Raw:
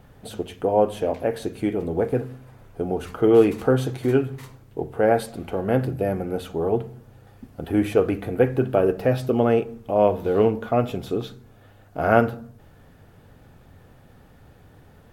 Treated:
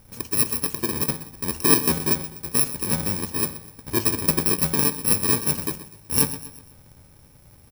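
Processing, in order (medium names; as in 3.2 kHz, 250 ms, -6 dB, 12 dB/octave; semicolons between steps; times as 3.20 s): bit-reversed sample order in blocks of 64 samples; feedback delay 242 ms, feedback 46%, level -14 dB; granular stretch 0.51×, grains 22 ms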